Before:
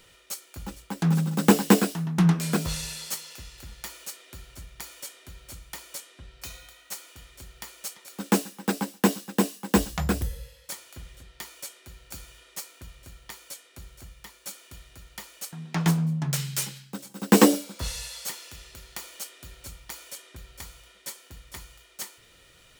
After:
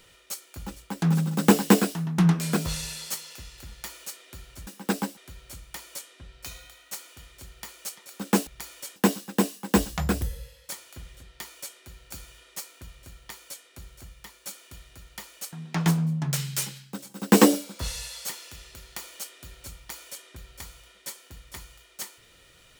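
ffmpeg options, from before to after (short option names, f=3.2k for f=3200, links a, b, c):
-filter_complex "[0:a]asplit=5[a][b][c][d][e];[a]atrim=end=4.672[f];[b]atrim=start=8.458:end=8.962[g];[c]atrim=start=5.158:end=8.462[h];[d]atrim=start=4.668:end=5.162[i];[e]atrim=start=8.958[j];[f][g]acrossfade=d=0.004:c1=hsin:c2=hsin[k];[k][h]acrossfade=d=0.004:c1=hsin:c2=hsin[l];[l][i]acrossfade=d=0.004:c1=hsin:c2=hsin[m];[m][j]acrossfade=d=0.004:c1=hsin:c2=hsin"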